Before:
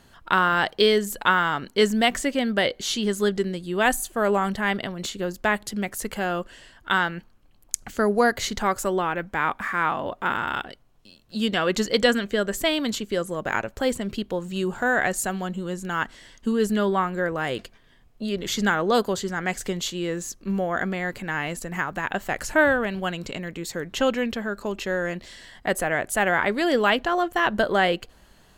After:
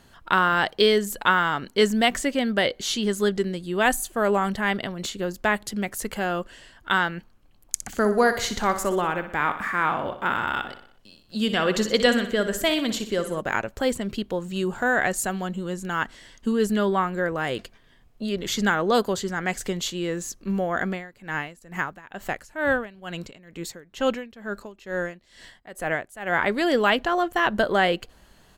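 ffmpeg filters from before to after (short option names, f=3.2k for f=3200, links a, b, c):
-filter_complex "[0:a]asplit=3[a][b][c];[a]afade=t=out:st=7.75:d=0.02[d];[b]aecho=1:1:61|122|183|244|305|366:0.282|0.147|0.0762|0.0396|0.0206|0.0107,afade=t=in:st=7.75:d=0.02,afade=t=out:st=13.4:d=0.02[e];[c]afade=t=in:st=13.4:d=0.02[f];[d][e][f]amix=inputs=3:normalize=0,asplit=3[g][h][i];[g]afade=t=out:st=20.88:d=0.02[j];[h]aeval=exprs='val(0)*pow(10,-19*(0.5-0.5*cos(2*PI*2.2*n/s))/20)':c=same,afade=t=in:st=20.88:d=0.02,afade=t=out:st=26.39:d=0.02[k];[i]afade=t=in:st=26.39:d=0.02[l];[j][k][l]amix=inputs=3:normalize=0"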